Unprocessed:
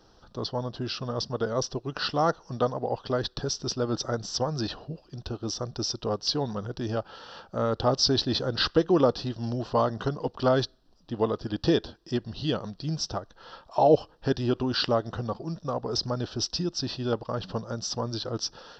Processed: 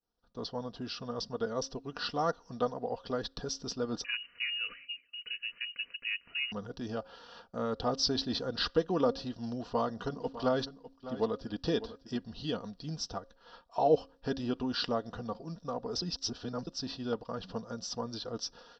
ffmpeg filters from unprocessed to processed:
-filter_complex "[0:a]asettb=1/sr,asplit=3[a][b][c];[a]atrim=end=4.044[d];[b]atrim=start=4.04:end=6.52,asetpts=PTS-STARTPTS,afade=t=in:d=0.004:c=qsin,afade=t=out:st=2.476:d=0.004:c=qsin,lowpass=f=2.6k:t=q:w=0.5098,lowpass=f=2.6k:t=q:w=0.6013,lowpass=f=2.6k:t=q:w=0.9,lowpass=f=2.6k:t=q:w=2.563,afreqshift=-3000[e];[c]atrim=start=6.516[f];[d][e]acrossfade=d=0.004:c1=hsin:c2=qsin[g];[g][f]acrossfade=d=0.004:c1=qsin:c2=hsin,asplit=3[h][i][j];[h]afade=t=out:st=10.09:d=0.02[k];[i]aecho=1:1:602:0.2,afade=t=in:st=10.09:d=0.02,afade=t=out:st=12.18:d=0.02[l];[j]afade=t=in:st=12.18:d=0.02[m];[k][l][m]amix=inputs=3:normalize=0,asplit=3[n][o][p];[n]atrim=end=16.022[q];[o]atrim=start=16.018:end=16.672,asetpts=PTS-STARTPTS,areverse[r];[p]atrim=start=16.668[s];[q][r]acrossfade=d=0.004:c1=hsin:c2=hsin[t];[t][s]acrossfade=d=0.004:c1=hsin:c2=hsin,agate=range=-33dB:threshold=-44dB:ratio=3:detection=peak,aecho=1:1:4.2:0.46,bandreject=f=270.7:t=h:w=4,bandreject=f=541.4:t=h:w=4,volume=-7.5dB"

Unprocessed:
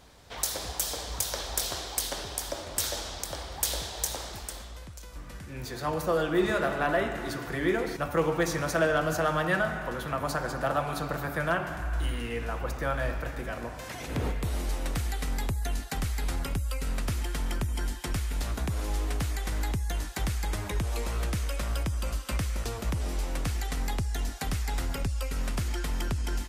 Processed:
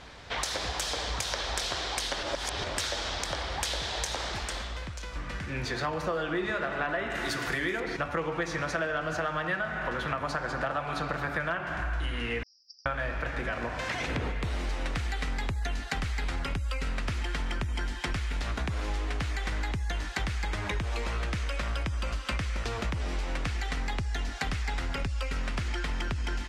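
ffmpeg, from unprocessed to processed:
-filter_complex "[0:a]asettb=1/sr,asplit=3[a][b][c];[a]atrim=end=7.104[d];[b]atrim=start=7.1:end=7.8,asetpts=PTS-STARTPTS,afade=t=in:d=0.004:c=qsin,afade=t=out:st=0.696:d=0.004:c=qsin,aemphasis=mode=production:type=75fm[e];[c]atrim=start=7.796[f];[d][e]acrossfade=d=0.004:c1=hsin:c2=qsin[g];[g][f]acrossfade=d=0.004:c1=qsin:c2=hsin,asettb=1/sr,asplit=3[h][i][j];[h]atrim=end=12.434[k];[i]atrim=start=12.43:end=12.86,asetpts=PTS-STARTPTS,afade=t=in:d=0.004:c=qsin,afade=t=out:st=0.426:d=0.004:c=qsin,asuperpass=centerf=5200:order=8:qfactor=5.7[l];[j]atrim=start=12.856[m];[k][l]acrossfade=d=0.004:c1=hsin:c2=qsin[n];[n][m]acrossfade=d=0.004:c1=qsin:c2=hsin,asplit=3[o][p][q];[o]atrim=end=2.232[r];[p]atrim=start=2.228:end=2.642,asetpts=PTS-STARTPTS,areverse[s];[q]atrim=start=2.638[t];[r][s]acrossfade=d=0.004:c1=hsin:c2=hsin[u];[u][t]acrossfade=d=0.004:c1=hsin:c2=hsin,lowpass=5.8k,equalizer=f=2k:t=o:w=1.9:g=6.5,acompressor=threshold=-34dB:ratio=6,volume=5.5dB"

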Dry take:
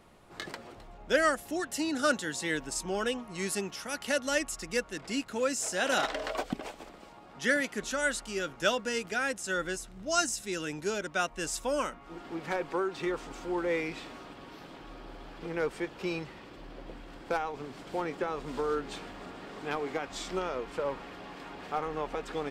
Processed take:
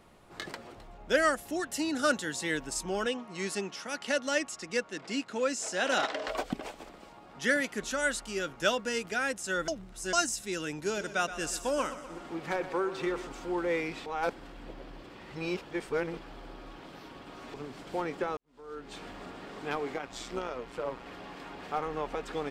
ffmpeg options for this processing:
-filter_complex "[0:a]asettb=1/sr,asplit=3[a][b][c];[a]atrim=end=3.064[d];[b]atrim=start=3.06:end=6.28,asetpts=PTS-STARTPTS,afade=t=in:d=0.004:c=qsin,afade=t=out:st=3.216:d=0.004:c=qsin,highpass=160,lowpass=7.4k[e];[c]atrim=start=6.276[f];[d][e]acrossfade=d=0.004:c1=hsin:c2=qsin[g];[g][f]acrossfade=d=0.004:c1=qsin:c2=hsin,asettb=1/sr,asplit=3[h][i][j];[h]atrim=end=10.724[k];[i]atrim=start=10.72:end=13.28,asetpts=PTS-STARTPTS,afade=t=in:d=0.004:c=qsin,afade=t=out:st=2.556:d=0.004:c=qsin,aecho=1:1:123|246|369|492|615|738:0.224|0.13|0.0753|0.0437|0.0253|0.0147,atrim=end_sample=112896[l];[j]atrim=start=13.276[m];[k][l]acrossfade=d=0.004:c1=hsin:c2=qsin[n];[n][m]acrossfade=d=0.004:c1=qsin:c2=hsin,asettb=1/sr,asplit=3[o][p][q];[o]atrim=end=19.944[r];[p]atrim=start=19.94:end=21.06,asetpts=PTS-STARTPTS,afade=t=in:d=0.004:c=qsin,afade=t=out:st=1.116:d=0.004:c=qsin,tremolo=f=120:d=0.621[s];[q]atrim=start=21.056[t];[r][s]acrossfade=d=0.004:c1=hsin:c2=qsin[u];[u][t]acrossfade=d=0.004:c1=qsin:c2=hsin,asplit=6[v][w][x][y][z][aa];[v]atrim=end=9.682[ab];[w]atrim=start=9.678:end=10.132,asetpts=PTS-STARTPTS,areverse[ac];[x]atrim=start=10.128:end=14.062[ad];[y]atrim=start=14.058:end=17.542,asetpts=PTS-STARTPTS,areverse[ae];[z]atrim=start=17.538:end=18.37,asetpts=PTS-STARTPTS,afade=t=out:st=0.828:d=0.004:c=hsin[af];[aa]atrim=start=18.37,asetpts=PTS-STARTPTS,afade=t=in:d=0.71:c=qua[ag];[ab][ac]acrossfade=d=0.004:c1=hsin:c2=hsin[ah];[ah][ad]acrossfade=d=0.004:c1=hsin:c2=hsin[ai];[ai][ae]acrossfade=d=0.004:c1=hsin:c2=hsin[aj];[af][ag]concat=n=2:v=0:a=1[ak];[aj][ak]acrossfade=d=0.004:c1=hsin:c2=hsin"

